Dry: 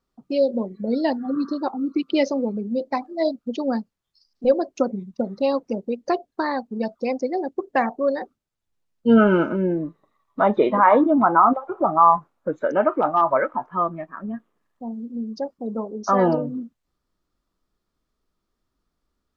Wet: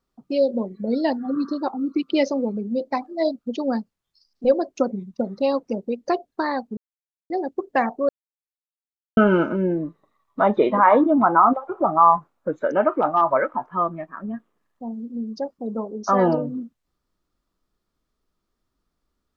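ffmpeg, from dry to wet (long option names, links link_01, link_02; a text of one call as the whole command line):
ffmpeg -i in.wav -filter_complex "[0:a]asplit=5[link_01][link_02][link_03][link_04][link_05];[link_01]atrim=end=6.77,asetpts=PTS-STARTPTS,afade=type=out:start_time=6.766:duration=0.004:curve=hsin[link_06];[link_02]atrim=start=6.77:end=7.3,asetpts=PTS-STARTPTS,volume=0[link_07];[link_03]atrim=start=7.3:end=8.09,asetpts=PTS-STARTPTS,afade=type=in:duration=0.004:curve=hsin,afade=type=out:start_time=0.786:duration=0.004:curve=hsin[link_08];[link_04]atrim=start=8.09:end=9.17,asetpts=PTS-STARTPTS,volume=0[link_09];[link_05]atrim=start=9.17,asetpts=PTS-STARTPTS,afade=type=in:duration=0.004:curve=hsin[link_10];[link_06][link_07][link_08][link_09][link_10]concat=n=5:v=0:a=1" out.wav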